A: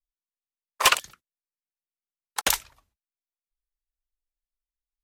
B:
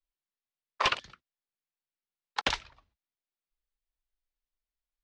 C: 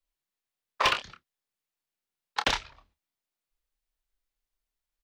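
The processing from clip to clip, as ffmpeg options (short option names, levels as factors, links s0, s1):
-filter_complex "[0:a]lowpass=f=4700:w=0.5412,lowpass=f=4700:w=1.3066,acrossover=split=350[s0][s1];[s1]acompressor=threshold=0.0631:ratio=6[s2];[s0][s2]amix=inputs=2:normalize=0"
-filter_complex "[0:a]asplit=2[s0][s1];[s1]asoftclip=type=hard:threshold=0.0596,volume=0.708[s2];[s0][s2]amix=inputs=2:normalize=0,asplit=2[s3][s4];[s4]adelay=28,volume=0.398[s5];[s3][s5]amix=inputs=2:normalize=0,volume=0.891"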